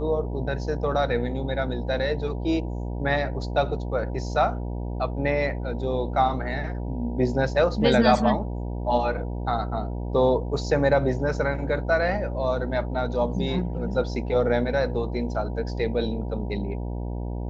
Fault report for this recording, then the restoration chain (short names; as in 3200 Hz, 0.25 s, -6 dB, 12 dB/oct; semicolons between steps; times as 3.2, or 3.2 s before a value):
buzz 60 Hz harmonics 16 -30 dBFS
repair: de-hum 60 Hz, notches 16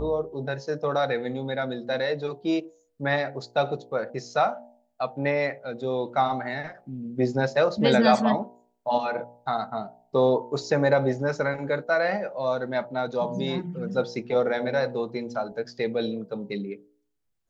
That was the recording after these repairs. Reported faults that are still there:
none